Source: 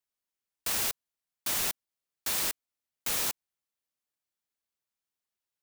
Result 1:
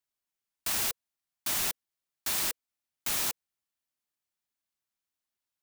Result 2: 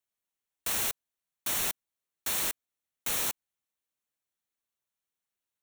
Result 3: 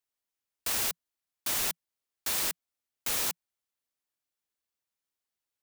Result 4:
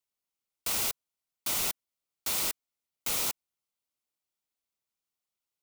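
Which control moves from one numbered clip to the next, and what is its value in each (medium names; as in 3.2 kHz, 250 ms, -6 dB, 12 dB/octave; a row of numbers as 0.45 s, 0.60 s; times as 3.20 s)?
band-stop, frequency: 490 Hz, 4.9 kHz, 170 Hz, 1.7 kHz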